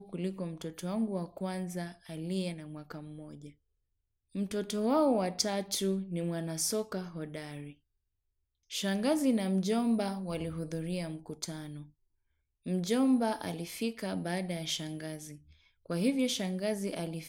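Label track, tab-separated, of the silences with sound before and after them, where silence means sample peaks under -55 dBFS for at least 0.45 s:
3.530000	4.350000	silence
7.750000	8.700000	silence
11.900000	12.660000	silence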